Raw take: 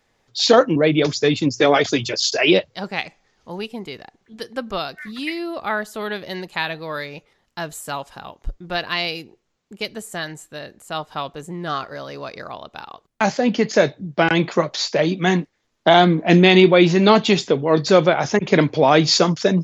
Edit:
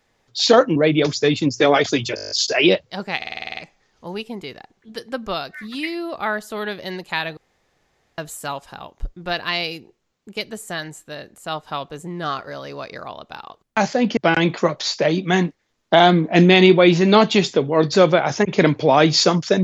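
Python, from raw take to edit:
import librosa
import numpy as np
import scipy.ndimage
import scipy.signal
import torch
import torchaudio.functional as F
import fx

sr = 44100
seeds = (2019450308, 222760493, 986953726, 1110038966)

y = fx.edit(x, sr, fx.stutter(start_s=2.15, slice_s=0.02, count=9),
    fx.stutter(start_s=3.01, slice_s=0.05, count=9),
    fx.room_tone_fill(start_s=6.81, length_s=0.81),
    fx.cut(start_s=13.61, length_s=0.5), tone=tone)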